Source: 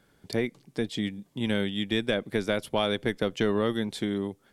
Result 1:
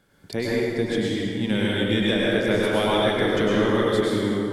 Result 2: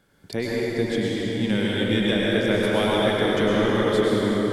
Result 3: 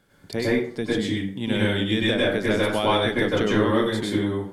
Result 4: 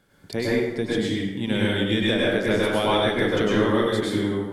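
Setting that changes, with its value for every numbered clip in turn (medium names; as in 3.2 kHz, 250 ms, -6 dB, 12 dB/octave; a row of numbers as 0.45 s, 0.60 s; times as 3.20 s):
plate-style reverb, RT60: 2.4 s, 5.1 s, 0.52 s, 1.1 s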